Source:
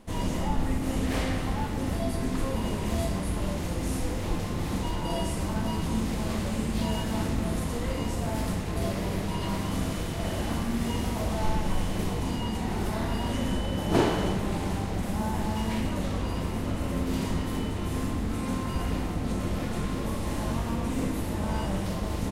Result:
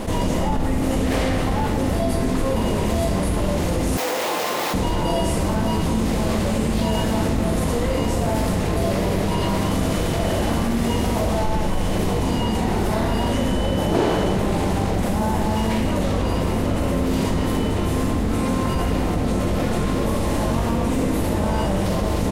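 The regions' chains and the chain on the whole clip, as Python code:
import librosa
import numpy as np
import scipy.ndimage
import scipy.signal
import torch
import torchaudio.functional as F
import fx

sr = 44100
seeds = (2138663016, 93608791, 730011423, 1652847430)

y = fx.chain(x, sr, fx.median_filter(points=5),
    fx.highpass(hz=630.0, slope=12),
    fx.high_shelf(hz=7000.0, db=10.5), at=(3.97, 4.74))
y = fx.peak_eq(y, sr, hz=530.0, db=4.5, octaves=1.2)
y = fx.env_flatten(y, sr, amount_pct=70)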